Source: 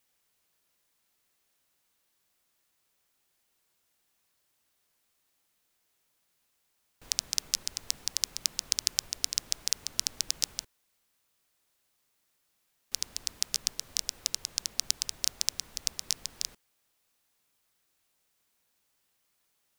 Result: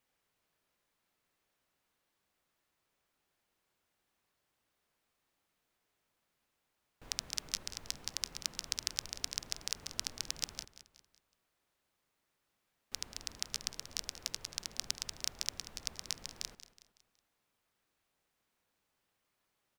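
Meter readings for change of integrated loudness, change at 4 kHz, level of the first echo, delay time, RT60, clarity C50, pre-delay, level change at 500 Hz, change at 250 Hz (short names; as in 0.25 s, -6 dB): -8.0 dB, -7.0 dB, -14.5 dB, 0.185 s, none, none, none, 0.0 dB, 0.0 dB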